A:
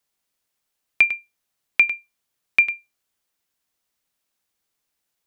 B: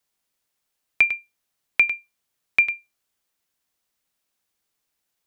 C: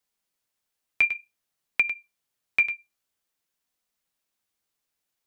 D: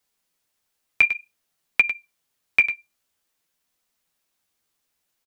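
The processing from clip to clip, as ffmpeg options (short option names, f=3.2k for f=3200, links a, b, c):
-filter_complex "[0:a]acrossover=split=3000[a][b];[b]acompressor=threshold=-29dB:ratio=4:attack=1:release=60[c];[a][c]amix=inputs=2:normalize=0"
-af "flanger=delay=3.9:depth=9:regen=-44:speed=0.53:shape=sinusoidal"
-filter_complex "[0:a]asplit=2[a][b];[b]adelay=12,volume=-10dB[c];[a][c]amix=inputs=2:normalize=0,volume=5.5dB"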